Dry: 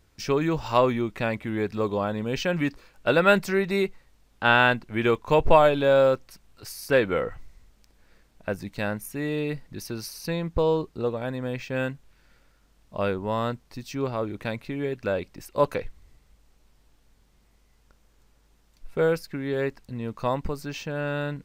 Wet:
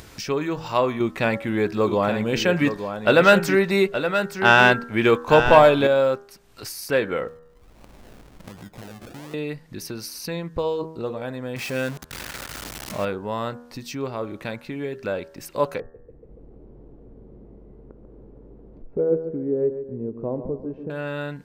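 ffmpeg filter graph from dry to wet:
-filter_complex "[0:a]asettb=1/sr,asplit=3[a][b][c];[a]atrim=end=1.004[d];[b]atrim=start=1:end=5.87,asetpts=PTS-STARTPTS,afade=t=in:d=0.004:c=qsin,afade=t=out:st=4.866:d=0.004:c=qsin,acontrast=55,aecho=1:1:871:0.376,atrim=end_sample=214767[e];[c]atrim=start=5.866[f];[d][e]acrossfade=d=0.004:c1=hsin:c2=qsin[g];[g][f]acrossfade=d=0.004:c1=qsin:c2=hsin,asettb=1/sr,asplit=3[h][i][j];[h]atrim=end=7.284[k];[i]atrim=start=7.28:end=9.34,asetpts=PTS-STARTPTS,afade=t=in:d=0.004:c=qsin,afade=t=out:st=2.056:d=0.004:c=qsin,equalizer=f=570:w=0.89:g=-15,acompressor=threshold=-51dB:ratio=2.5:attack=3.2:release=140:knee=1:detection=peak,acrusher=samples=36:mix=1:aa=0.000001:lfo=1:lforange=21.6:lforate=1.3[l];[j]atrim=start=9.336[m];[k][l]acrossfade=d=0.004:c1=hsin:c2=qsin[n];[n][m]acrossfade=d=0.004:c1=qsin:c2=hsin,asettb=1/sr,asplit=3[o][p][q];[o]atrim=end=11.564[r];[p]atrim=start=11.56:end=13.05,asetpts=PTS-STARTPTS,afade=t=in:d=0.004:c=qsin,afade=t=out:st=1.486:d=0.004:c=qsin,aeval=exprs='val(0)+0.5*0.0355*sgn(val(0))':c=same,highpass=50[s];[q]atrim=start=13.046[t];[r][s]acrossfade=d=0.004:c1=hsin:c2=qsin[u];[u][t]acrossfade=d=0.004:c1=qsin:c2=hsin,asettb=1/sr,asplit=3[v][w][x];[v]atrim=end=15.804[y];[w]atrim=start=15.8:end=20.9,asetpts=PTS-STARTPTS,afade=t=in:d=0.004:c=qsin,afade=t=out:st=5.096:d=0.004:c=qsin,lowpass=f=410:t=q:w=2.1,aecho=1:1:142|284|426|568:0.316|0.126|0.0506|0.0202,atrim=end_sample=224910[z];[x]atrim=start=20.896[aa];[y][z]acrossfade=d=0.004:c1=hsin:c2=qsin[ab];[ab][aa]acrossfade=d=0.004:c1=qsin:c2=hsin,lowshelf=f=71:g=-12,bandreject=f=80.19:t=h:w=4,bandreject=f=160.38:t=h:w=4,bandreject=f=240.57:t=h:w=4,bandreject=f=320.76:t=h:w=4,bandreject=f=400.95:t=h:w=4,bandreject=f=481.14:t=h:w=4,bandreject=f=561.33:t=h:w=4,bandreject=f=641.52:t=h:w=4,bandreject=f=721.71:t=h:w=4,bandreject=f=801.9:t=h:w=4,bandreject=f=882.09:t=h:w=4,bandreject=f=962.28:t=h:w=4,bandreject=f=1.04247k:t=h:w=4,bandreject=f=1.12266k:t=h:w=4,bandreject=f=1.20285k:t=h:w=4,bandreject=f=1.28304k:t=h:w=4,bandreject=f=1.36323k:t=h:w=4,bandreject=f=1.44342k:t=h:w=4,bandreject=f=1.52361k:t=h:w=4,bandreject=f=1.6038k:t=h:w=4,bandreject=f=1.68399k:t=h:w=4,bandreject=f=1.76418k:t=h:w=4,bandreject=f=1.84437k:t=h:w=4,acompressor=mode=upward:threshold=-28dB:ratio=2.5"

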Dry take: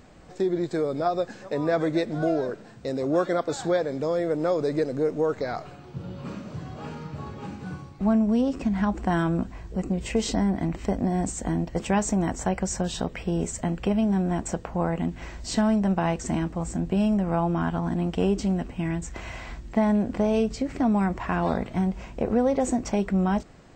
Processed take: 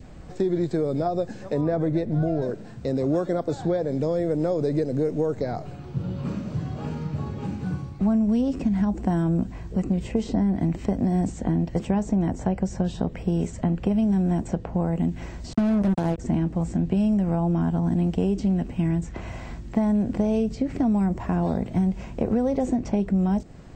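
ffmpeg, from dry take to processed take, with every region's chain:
-filter_complex "[0:a]asettb=1/sr,asplit=3[a][b][c];[a]atrim=end=1.614[d];[b]atrim=start=1.61:end=2.42,asetpts=PTS-STARTPTS,afade=t=in:d=0.004:c=qsin,afade=t=out:st=0.806:d=0.004:c=qsin,lowpass=f=2k:p=1,asubboost=boost=11:cutoff=150[e];[c]atrim=start=2.416[f];[d][e]acrossfade=d=0.004:c1=hsin:c2=qsin[g];[g][f]acrossfade=d=0.004:c1=qsin:c2=hsin,asettb=1/sr,asplit=3[h][i][j];[h]atrim=end=15.534[k];[i]atrim=start=15.53:end=16.18,asetpts=PTS-STARTPTS,afade=t=in:d=0.004:c=qsin,afade=t=out:st=0.646:d=0.004:c=qsin,agate=range=-33dB:threshold=-29dB:ratio=3:release=100:detection=peak,acrusher=bits=3:mix=0:aa=0.5[l];[j]atrim=start=16.176[m];[k][l]acrossfade=d=0.004:c1=hsin:c2=qsin[n];[n][m]acrossfade=d=0.004:c1=qsin:c2=hsin,lowshelf=f=200:g=12,acrossover=split=100|1200|5400[o][p][q][r];[o]acompressor=threshold=-41dB:ratio=4[s];[p]acompressor=threshold=-21dB:ratio=4[t];[q]acompressor=threshold=-48dB:ratio=4[u];[r]acompressor=threshold=-57dB:ratio=4[v];[s][t][u][v]amix=inputs=4:normalize=0,adynamicequalizer=threshold=0.00355:dfrequency=1200:dqfactor=2.2:tfrequency=1200:tqfactor=2.2:attack=5:release=100:ratio=0.375:range=3:mode=cutabove:tftype=bell,volume=1dB"

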